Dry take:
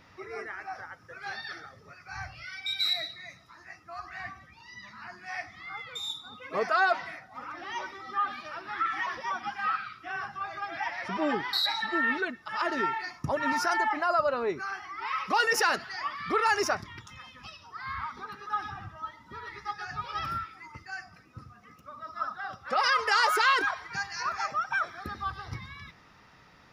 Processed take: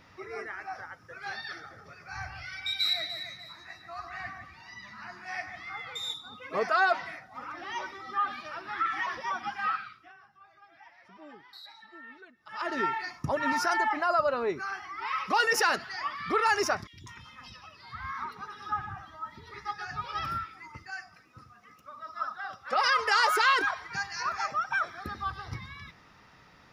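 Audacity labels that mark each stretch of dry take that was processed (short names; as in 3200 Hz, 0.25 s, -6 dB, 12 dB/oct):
1.560000	6.140000	echo with dull and thin repeats by turns 0.148 s, split 2300 Hz, feedback 59%, level -7 dB
9.660000	12.840000	dip -21 dB, fades 0.49 s
16.870000	19.540000	three bands offset in time highs, lows, mids 60/190 ms, splits 440/2600 Hz
20.900000	22.730000	low shelf 350 Hz -9 dB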